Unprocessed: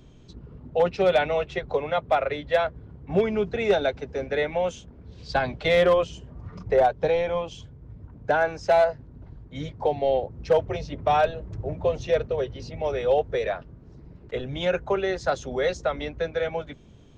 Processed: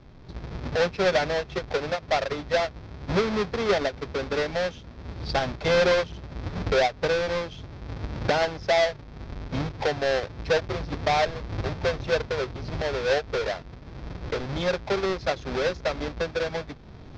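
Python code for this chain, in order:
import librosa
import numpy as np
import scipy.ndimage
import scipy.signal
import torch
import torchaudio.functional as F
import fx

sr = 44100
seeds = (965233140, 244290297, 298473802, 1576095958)

y = fx.halfwave_hold(x, sr)
y = fx.recorder_agc(y, sr, target_db=-18.5, rise_db_per_s=17.0, max_gain_db=30)
y = scipy.signal.sosfilt(scipy.signal.butter(6, 5500.0, 'lowpass', fs=sr, output='sos'), y)
y = fx.notch(y, sr, hz=2900.0, q=15.0)
y = fx.end_taper(y, sr, db_per_s=330.0)
y = F.gain(torch.from_numpy(y), -5.0).numpy()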